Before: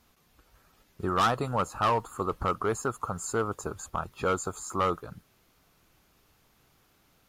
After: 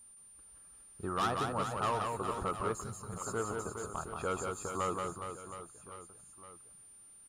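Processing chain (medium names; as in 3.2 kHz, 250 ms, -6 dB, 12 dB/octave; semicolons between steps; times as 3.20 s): reverse bouncing-ball echo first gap 180 ms, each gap 1.3×, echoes 5; whistle 9.2 kHz -46 dBFS; time-frequency box 2.83–3.13 s, 220–3800 Hz -12 dB; trim -8 dB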